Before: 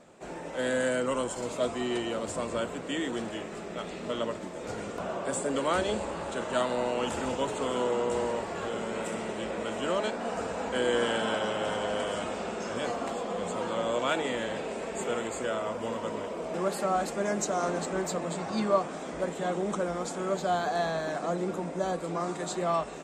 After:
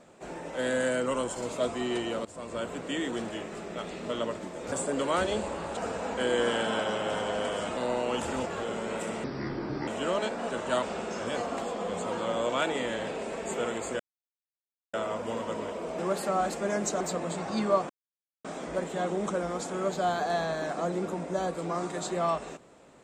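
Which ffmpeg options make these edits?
-filter_complex "[0:a]asplit=13[s0][s1][s2][s3][s4][s5][s6][s7][s8][s9][s10][s11][s12];[s0]atrim=end=2.25,asetpts=PTS-STARTPTS,afade=t=out:st=2.246:d=0.004:c=hsin:silence=0.149624[s13];[s1]atrim=start=2.25:end=4.722,asetpts=PTS-STARTPTS,afade=t=in:d=0.51:silence=0.149624[s14];[s2]atrim=start=5.288:end=6.342[s15];[s3]atrim=start=10.318:end=12.322[s16];[s4]atrim=start=6.658:end=7.352[s17];[s5]atrim=start=8.508:end=9.294[s18];[s6]atrim=start=9.29:end=9.69,asetpts=PTS-STARTPTS,asetrate=27783,aresample=44100[s19];[s7]atrim=start=9.686:end=10.322[s20];[s8]atrim=start=6.338:end=6.662[s21];[s9]atrim=start=12.318:end=15.49,asetpts=PTS-STARTPTS,afade=t=out:st=3.168:d=0.004:c=hsin,apad=pad_dur=0.94[s22];[s10]atrim=start=15.49:end=17.562,asetpts=PTS-STARTPTS,afade=t=in:d=0.004:c=hsin[s23];[s11]atrim=start=18.008:end=18.9,asetpts=PTS-STARTPTS,afade=t=out:st=0.888:d=0.004:c=hsin,apad=pad_dur=0.55[s24];[s12]atrim=start=18.9,asetpts=PTS-STARTPTS,afade=t=in:d=0.004:c=hsin[s25];[s13][s14]concat=n=2:v=0:a=1[s26];[s26][s15]acrossfade=d=0.004:c1=hsin:c2=hsin[s27];[s27][s16]acrossfade=d=0.004:c1=hsin:c2=hsin[s28];[s28][s17]acrossfade=d=0.004:c1=hsin:c2=hsin[s29];[s29][s18]acrossfade=d=0.004:c1=hsin:c2=hsin[s30];[s30][s19]acrossfade=d=0.004:c1=hsin:c2=hsin[s31];[s31][s20]acrossfade=d=0.004:c1=hsin:c2=hsin[s32];[s32][s21]acrossfade=d=0.004:c1=hsin:c2=hsin[s33];[s22][s23]concat=n=2:v=0:a=1[s34];[s33][s34]acrossfade=d=0.004:c1=hsin:c2=hsin[s35];[s24][s25]concat=n=2:v=0:a=1[s36];[s35][s36]acrossfade=d=0.004:c1=hsin:c2=hsin"

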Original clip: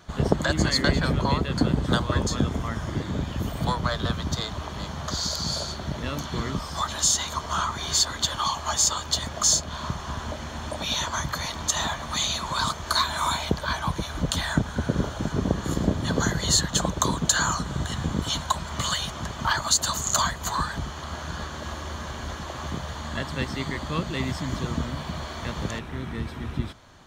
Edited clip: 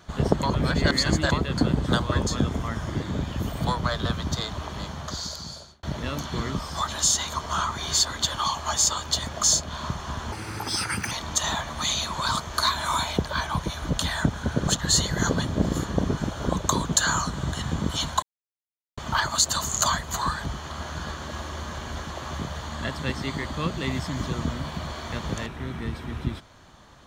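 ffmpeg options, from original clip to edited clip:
-filter_complex "[0:a]asplit=10[s0][s1][s2][s3][s4][s5][s6][s7][s8][s9];[s0]atrim=end=0.432[s10];[s1]atrim=start=0.428:end=1.322,asetpts=PTS-STARTPTS,areverse[s11];[s2]atrim=start=1.318:end=5.83,asetpts=PTS-STARTPTS,afade=t=out:st=3.462:d=1.05[s12];[s3]atrim=start=5.83:end=10.324,asetpts=PTS-STARTPTS,afade=t=in:d=0.004:c=hsin[s13];[s4]atrim=start=10.32:end=11.44,asetpts=PTS-STARTPTS,asetrate=62181,aresample=44100[s14];[s5]atrim=start=11.436:end=15.002[s15];[s6]atrim=start=14.998:end=16.822,asetpts=PTS-STARTPTS,areverse[s16];[s7]atrim=start=16.818:end=18.55,asetpts=PTS-STARTPTS,afade=t=out:st=1.728:d=0.004:c=hsin[s17];[s8]atrim=start=18.55:end=19.3,asetpts=PTS-STARTPTS,volume=0[s18];[s9]atrim=start=19.3,asetpts=PTS-STARTPTS,afade=t=in:d=0.004:c=hsin[s19];[s10][s11]acrossfade=d=0.004:c1=hsin:c2=hsin[s20];[s12][s13]concat=n=2:v=0:a=1[s21];[s20][s21]acrossfade=d=0.004:c1=hsin:c2=hsin[s22];[s22][s14]acrossfade=d=0.004:c1=hsin:c2=hsin[s23];[s23][s15]acrossfade=d=0.004:c1=hsin:c2=hsin[s24];[s24][s16]acrossfade=d=0.004:c1=hsin:c2=hsin[s25];[s17][s18][s19]concat=n=3:v=0:a=1[s26];[s25][s26]acrossfade=d=0.004:c1=hsin:c2=hsin"

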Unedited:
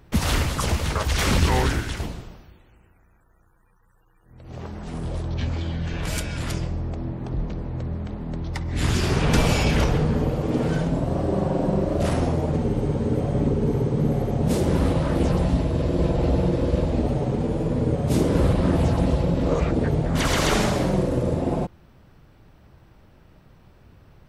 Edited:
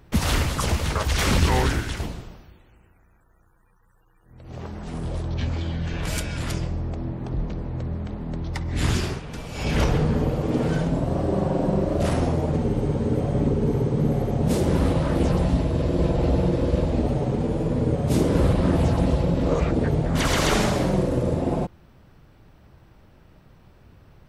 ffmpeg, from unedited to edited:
-filter_complex "[0:a]asplit=3[s0][s1][s2];[s0]atrim=end=9.22,asetpts=PTS-STARTPTS,afade=t=out:st=8.92:d=0.3:silence=0.158489[s3];[s1]atrim=start=9.22:end=9.52,asetpts=PTS-STARTPTS,volume=0.158[s4];[s2]atrim=start=9.52,asetpts=PTS-STARTPTS,afade=t=in:d=0.3:silence=0.158489[s5];[s3][s4][s5]concat=n=3:v=0:a=1"

